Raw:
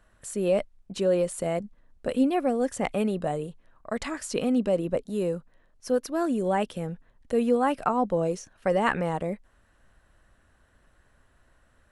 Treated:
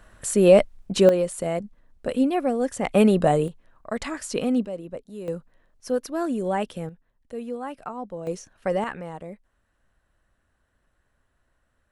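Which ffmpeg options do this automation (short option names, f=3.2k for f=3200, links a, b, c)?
-af "asetnsamples=n=441:p=0,asendcmd='1.09 volume volume 1.5dB;2.95 volume volume 9.5dB;3.48 volume volume 1.5dB;4.65 volume volume -8.5dB;5.28 volume volume 0dB;6.89 volume volume -9.5dB;8.27 volume volume -0.5dB;8.84 volume volume -8dB',volume=10dB"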